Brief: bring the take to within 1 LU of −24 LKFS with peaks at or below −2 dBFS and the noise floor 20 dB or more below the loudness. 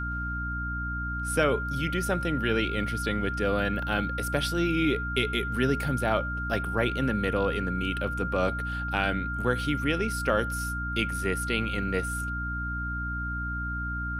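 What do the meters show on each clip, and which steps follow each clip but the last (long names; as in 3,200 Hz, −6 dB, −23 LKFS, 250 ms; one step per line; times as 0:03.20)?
mains hum 60 Hz; hum harmonics up to 300 Hz; level of the hum −31 dBFS; interfering tone 1,400 Hz; level of the tone −32 dBFS; integrated loudness −28.5 LKFS; sample peak −9.5 dBFS; target loudness −24.0 LKFS
→ hum removal 60 Hz, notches 5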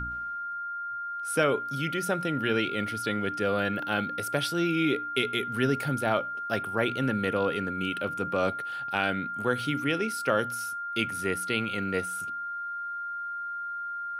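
mains hum none found; interfering tone 1,400 Hz; level of the tone −32 dBFS
→ notch filter 1,400 Hz, Q 30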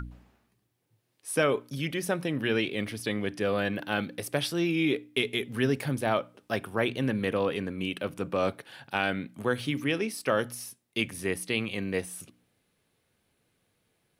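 interfering tone none found; integrated loudness −30.0 LKFS; sample peak −10.5 dBFS; target loudness −24.0 LKFS
→ level +6 dB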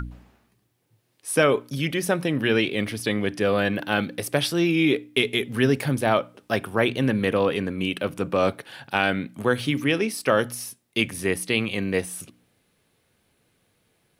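integrated loudness −24.0 LKFS; sample peak −4.5 dBFS; background noise floor −69 dBFS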